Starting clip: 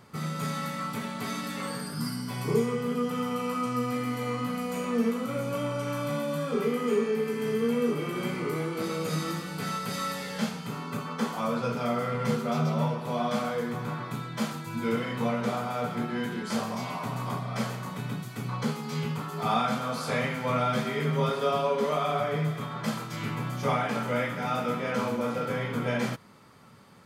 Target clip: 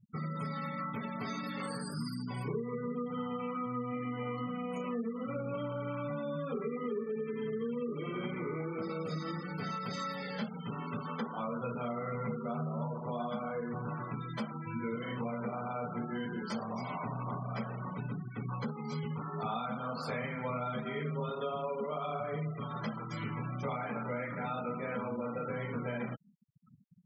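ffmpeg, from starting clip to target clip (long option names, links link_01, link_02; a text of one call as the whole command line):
ffmpeg -i in.wav -af "acompressor=threshold=-32dB:ratio=4,afftfilt=real='re*gte(hypot(re,im),0.0141)':imag='im*gte(hypot(re,im),0.0141)':win_size=1024:overlap=0.75,volume=-2dB" out.wav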